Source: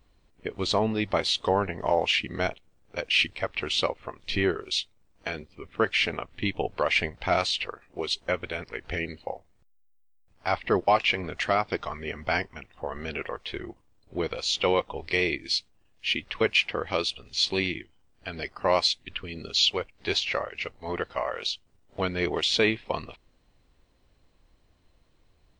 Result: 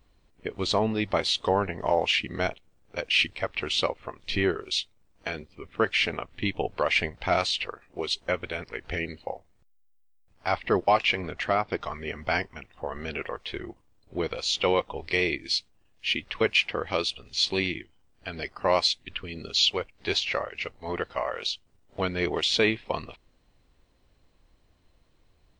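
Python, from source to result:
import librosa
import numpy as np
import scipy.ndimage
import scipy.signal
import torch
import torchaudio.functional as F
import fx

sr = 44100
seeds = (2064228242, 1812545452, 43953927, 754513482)

y = fx.high_shelf(x, sr, hz=4200.0, db=-10.0, at=(11.32, 11.81))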